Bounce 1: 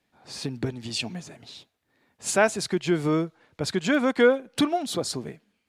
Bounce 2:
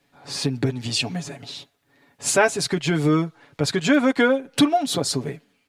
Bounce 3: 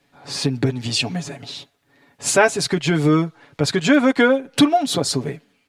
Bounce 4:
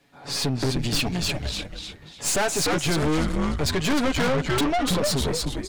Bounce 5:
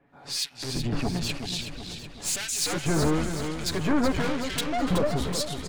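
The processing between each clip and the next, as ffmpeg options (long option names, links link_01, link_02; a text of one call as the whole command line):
ffmpeg -i in.wav -filter_complex "[0:a]aecho=1:1:7.1:0.65,asplit=2[link_01][link_02];[link_02]acompressor=threshold=-29dB:ratio=6,volume=1.5dB[link_03];[link_01][link_03]amix=inputs=2:normalize=0" out.wav
ffmpeg -i in.wav -af "highshelf=frequency=11000:gain=-4.5,volume=3dB" out.wav
ffmpeg -i in.wav -filter_complex "[0:a]asplit=5[link_01][link_02][link_03][link_04][link_05];[link_02]adelay=297,afreqshift=-110,volume=-5dB[link_06];[link_03]adelay=594,afreqshift=-220,volume=-14.9dB[link_07];[link_04]adelay=891,afreqshift=-330,volume=-24.8dB[link_08];[link_05]adelay=1188,afreqshift=-440,volume=-34.7dB[link_09];[link_01][link_06][link_07][link_08][link_09]amix=inputs=5:normalize=0,aeval=exprs='(tanh(14.1*val(0)+0.45)-tanh(0.45))/14.1':channel_layout=same,volume=2.5dB" out.wav
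ffmpeg -i in.wav -filter_complex "[0:a]acrossover=split=2000[link_01][link_02];[link_01]aeval=exprs='val(0)*(1-1/2+1/2*cos(2*PI*1*n/s))':channel_layout=same[link_03];[link_02]aeval=exprs='val(0)*(1-1/2-1/2*cos(2*PI*1*n/s))':channel_layout=same[link_04];[link_03][link_04]amix=inputs=2:normalize=0,asplit=2[link_05][link_06];[link_06]aecho=0:1:374|748|1122|1496|1870|2244:0.398|0.203|0.104|0.0528|0.0269|0.0137[link_07];[link_05][link_07]amix=inputs=2:normalize=0" out.wav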